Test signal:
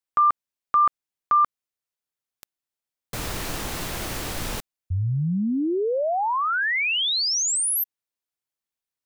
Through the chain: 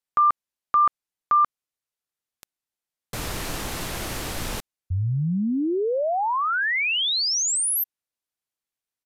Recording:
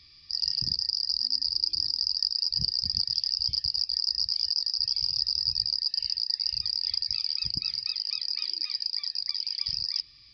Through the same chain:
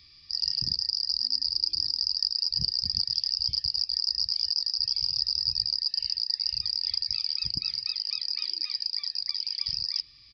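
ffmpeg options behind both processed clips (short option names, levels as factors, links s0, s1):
-af "aresample=32000,aresample=44100"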